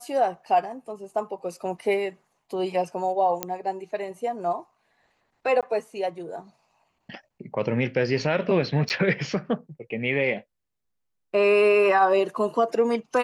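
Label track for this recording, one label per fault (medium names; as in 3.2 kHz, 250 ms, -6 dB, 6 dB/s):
3.430000	3.430000	pop -9 dBFS
5.610000	5.630000	dropout 17 ms
8.890000	8.900000	dropout 9.7 ms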